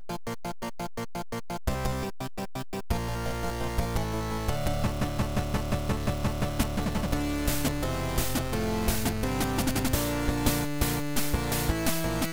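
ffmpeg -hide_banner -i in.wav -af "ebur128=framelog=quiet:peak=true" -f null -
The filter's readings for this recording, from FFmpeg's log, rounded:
Integrated loudness:
  I:         -30.0 LUFS
  Threshold: -40.0 LUFS
Loudness range:
  LRA:         5.2 LU
  Threshold: -49.9 LUFS
  LRA low:   -33.3 LUFS
  LRA high:  -28.1 LUFS
True peak:
  Peak:      -10.5 dBFS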